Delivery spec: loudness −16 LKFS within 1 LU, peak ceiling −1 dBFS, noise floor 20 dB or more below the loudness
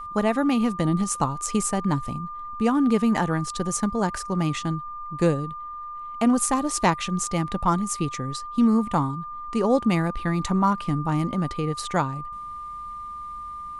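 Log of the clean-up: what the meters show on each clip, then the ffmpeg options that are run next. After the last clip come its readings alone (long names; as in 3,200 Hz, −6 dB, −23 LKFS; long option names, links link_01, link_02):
interfering tone 1,200 Hz; level of the tone −33 dBFS; integrated loudness −24.5 LKFS; sample peak −7.5 dBFS; target loudness −16.0 LKFS
→ -af "bandreject=frequency=1200:width=30"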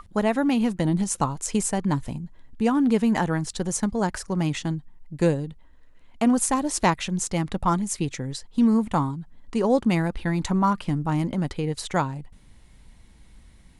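interfering tone none found; integrated loudness −24.5 LKFS; sample peak −8.0 dBFS; target loudness −16.0 LKFS
→ -af "volume=8.5dB,alimiter=limit=-1dB:level=0:latency=1"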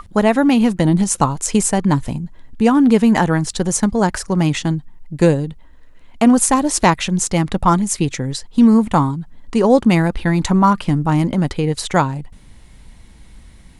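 integrated loudness −16.0 LKFS; sample peak −1.0 dBFS; background noise floor −43 dBFS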